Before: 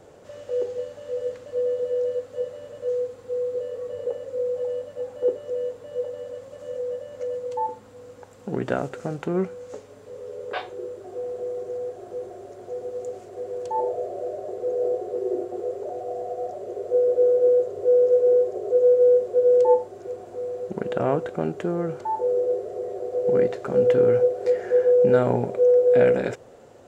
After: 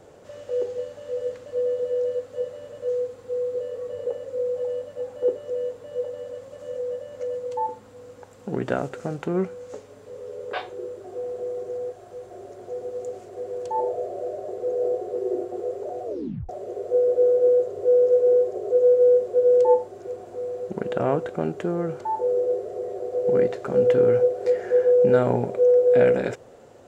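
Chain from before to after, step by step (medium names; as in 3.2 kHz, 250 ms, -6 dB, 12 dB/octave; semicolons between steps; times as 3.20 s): 11.92–12.32 s: peaking EQ 340 Hz -8.5 dB 1.5 oct; 16.05 s: tape stop 0.44 s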